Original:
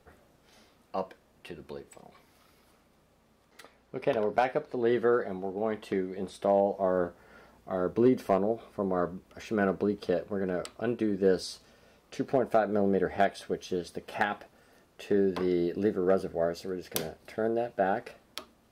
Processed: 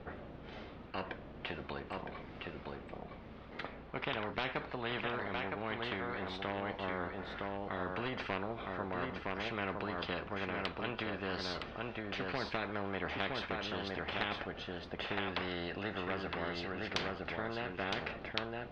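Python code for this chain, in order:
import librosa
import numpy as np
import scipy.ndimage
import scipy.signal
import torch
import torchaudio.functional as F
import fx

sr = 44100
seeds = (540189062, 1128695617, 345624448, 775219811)

p1 = scipy.signal.sosfilt(scipy.signal.butter(4, 3400.0, 'lowpass', fs=sr, output='sos'), x)
p2 = fx.low_shelf(p1, sr, hz=390.0, db=7.0)
p3 = p2 + fx.echo_single(p2, sr, ms=963, db=-7.0, dry=0)
p4 = fx.spectral_comp(p3, sr, ratio=4.0)
y = p4 * 10.0 ** (-5.5 / 20.0)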